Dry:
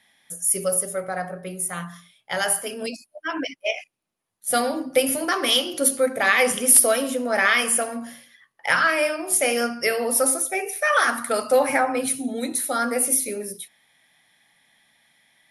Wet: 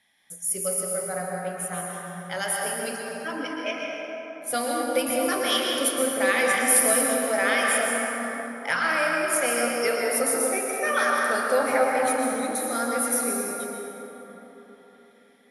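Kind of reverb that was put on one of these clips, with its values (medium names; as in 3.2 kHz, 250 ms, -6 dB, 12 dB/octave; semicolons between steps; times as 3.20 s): plate-style reverb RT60 4 s, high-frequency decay 0.4×, pre-delay 105 ms, DRR -2 dB; trim -6 dB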